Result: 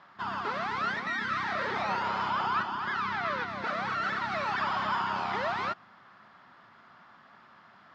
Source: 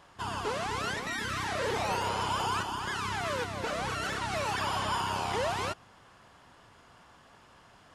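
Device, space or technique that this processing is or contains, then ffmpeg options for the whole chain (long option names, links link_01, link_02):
kitchen radio: -filter_complex "[0:a]asettb=1/sr,asplit=3[link_01][link_02][link_03];[link_01]atrim=end=2.304[link_04];[link_02]atrim=start=2.3:end=3.48,asetpts=PTS-STARTPTS,afade=type=in:duration=0.004:curve=qsin,afade=type=out:start_time=1.176:duration=0.004:curve=qsin,lowpass=6200[link_05];[link_03]atrim=start=3.476[link_06];[link_04][link_05]acrossfade=duration=0.004:curve1=hsin:curve2=qsin[link_07];[link_07][link_06]acrossfade=duration=0.004:curve1=qsin:curve2=hsin,highpass=170,equalizer=frequency=210:width_type=q:width=4:gain=5,equalizer=frequency=300:width_type=q:width=4:gain=-4,equalizer=frequency=470:width_type=q:width=4:gain=-9,equalizer=frequency=1300:width_type=q:width=4:gain=7,equalizer=frequency=1900:width_type=q:width=4:gain=4,equalizer=frequency=2900:width_type=q:width=4:gain=-6,lowpass=frequency=4400:width=0.5412,lowpass=frequency=4400:width=1.3066"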